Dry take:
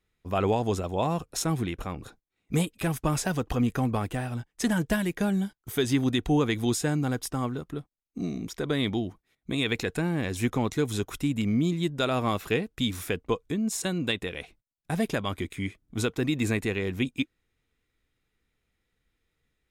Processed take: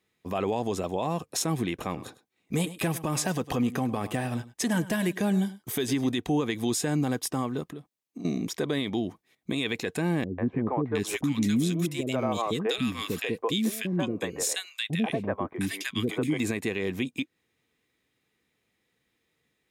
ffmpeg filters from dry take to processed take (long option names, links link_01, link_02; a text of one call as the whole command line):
ffmpeg -i in.wav -filter_complex "[0:a]asettb=1/sr,asplit=3[link_01][link_02][link_03];[link_01]atrim=end=1.724[link_04];[link_02]atrim=start=1.72:end=6.12,asetpts=PTS-STARTPTS,afade=type=in:duration=0.004:curve=qsin,afade=type=out:start_time=4.396:duration=0.004:curve=qsin,aecho=1:1:103:0.126,atrim=end_sample=194040[link_05];[link_03]atrim=start=6.116[link_06];[link_04][link_05]acrossfade=duration=0.004:curve1=hsin:curve2=qsin[link_07];[link_07][link_06]acrossfade=duration=0.004:curve1=qsin:curve2=hsin,asettb=1/sr,asplit=3[link_08][link_09][link_10];[link_08]atrim=end=7.694[link_11];[link_09]atrim=start=7.69:end=8.25,asetpts=PTS-STARTPTS,afade=type=in:duration=0.004:curve=qsin,afade=type=out:start_time=0.556:duration=0.004:curve=qsin,acompressor=threshold=-40dB:ratio=6:attack=3.2:release=140:knee=1:detection=peak[link_12];[link_10]atrim=start=8.246[link_13];[link_11][link_12]acrossfade=duration=0.004:curve1=hsin:curve2=qsin[link_14];[link_14][link_13]acrossfade=duration=0.004:curve1=qsin:curve2=hsin,asettb=1/sr,asplit=3[link_15][link_16][link_17];[link_15]atrim=end=10.244[link_18];[link_16]atrim=start=10.24:end=16.39,asetpts=PTS-STARTPTS,afade=type=in:duration=0.004:curve=qsin,afade=type=out:start_time=6.146:duration=0.004:curve=qsin,acrossover=split=410|1500[link_19][link_20][link_21];[link_20]adelay=140[link_22];[link_21]adelay=710[link_23];[link_19][link_22][link_23]amix=inputs=3:normalize=0,atrim=end_sample=271215[link_24];[link_17]atrim=start=16.386[link_25];[link_18][link_24]acrossfade=duration=0.004:curve1=hsin:curve2=qsin[link_26];[link_26][link_25]acrossfade=duration=0.004:curve1=qsin:curve2=hsin,highpass=150,bandreject=frequency=1400:width=7.7,alimiter=limit=-22.5dB:level=0:latency=1:release=172,volume=5dB" out.wav